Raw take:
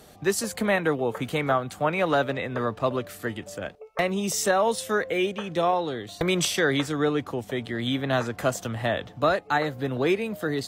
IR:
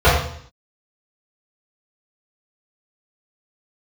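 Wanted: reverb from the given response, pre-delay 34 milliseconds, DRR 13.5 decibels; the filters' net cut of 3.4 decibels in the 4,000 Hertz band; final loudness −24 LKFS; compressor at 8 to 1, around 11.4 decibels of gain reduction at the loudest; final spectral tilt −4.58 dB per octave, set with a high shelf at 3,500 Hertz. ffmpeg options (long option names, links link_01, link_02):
-filter_complex "[0:a]highshelf=frequency=3500:gain=4.5,equalizer=frequency=4000:width_type=o:gain=-7.5,acompressor=threshold=-30dB:ratio=8,asplit=2[link_01][link_02];[1:a]atrim=start_sample=2205,adelay=34[link_03];[link_02][link_03]afir=irnorm=-1:irlink=0,volume=-40.5dB[link_04];[link_01][link_04]amix=inputs=2:normalize=0,volume=10dB"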